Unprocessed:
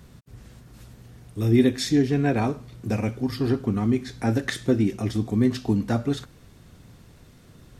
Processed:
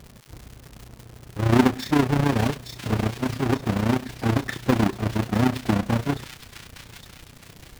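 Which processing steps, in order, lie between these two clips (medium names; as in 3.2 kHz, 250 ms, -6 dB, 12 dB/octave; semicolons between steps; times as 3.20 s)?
square wave that keeps the level; treble shelf 4 kHz -11 dB; on a send: feedback echo behind a high-pass 862 ms, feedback 41%, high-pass 2.8 kHz, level -4 dB; on the sum: crackle 350 per s -32 dBFS; AM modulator 30 Hz, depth 55%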